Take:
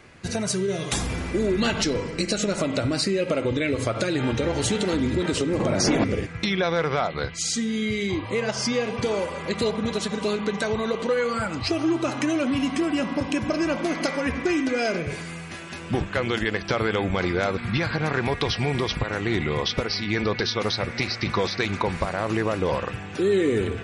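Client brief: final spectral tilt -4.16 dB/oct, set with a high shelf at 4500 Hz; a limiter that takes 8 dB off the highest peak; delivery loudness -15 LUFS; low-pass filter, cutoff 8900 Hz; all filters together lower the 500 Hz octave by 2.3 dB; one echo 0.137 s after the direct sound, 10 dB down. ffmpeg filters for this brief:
-af "lowpass=8.9k,equalizer=f=500:t=o:g=-3,highshelf=f=4.5k:g=7,alimiter=limit=-16dB:level=0:latency=1,aecho=1:1:137:0.316,volume=11dB"

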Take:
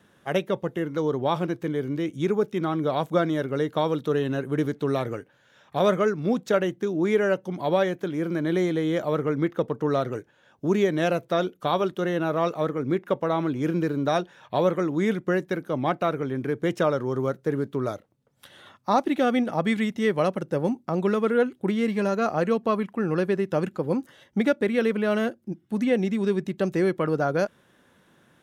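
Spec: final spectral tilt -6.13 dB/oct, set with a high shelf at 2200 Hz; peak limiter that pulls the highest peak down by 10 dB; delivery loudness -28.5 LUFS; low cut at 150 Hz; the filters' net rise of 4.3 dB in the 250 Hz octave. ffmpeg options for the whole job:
-af "highpass=150,equalizer=f=250:t=o:g=6.5,highshelf=f=2.2k:g=4,volume=-2.5dB,alimiter=limit=-18.5dB:level=0:latency=1"

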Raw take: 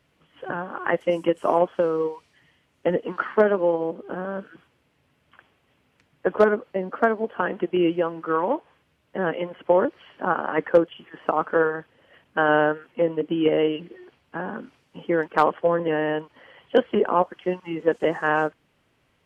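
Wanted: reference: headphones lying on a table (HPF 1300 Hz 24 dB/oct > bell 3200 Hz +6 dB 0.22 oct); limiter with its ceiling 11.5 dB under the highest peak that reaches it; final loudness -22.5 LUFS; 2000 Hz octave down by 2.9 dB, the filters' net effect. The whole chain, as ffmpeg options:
-af "equalizer=f=2k:t=o:g=-3,alimiter=limit=-17dB:level=0:latency=1,highpass=f=1.3k:w=0.5412,highpass=f=1.3k:w=1.3066,equalizer=f=3.2k:t=o:w=0.22:g=6,volume=18dB"

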